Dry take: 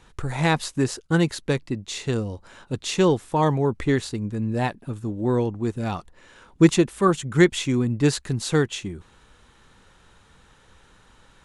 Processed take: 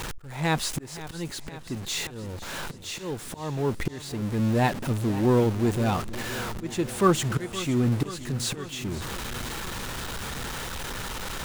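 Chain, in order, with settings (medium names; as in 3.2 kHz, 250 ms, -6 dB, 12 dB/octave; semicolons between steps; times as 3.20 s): jump at every zero crossing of -28.5 dBFS; slow attack 575 ms; modulated delay 519 ms, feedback 68%, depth 62 cents, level -15.5 dB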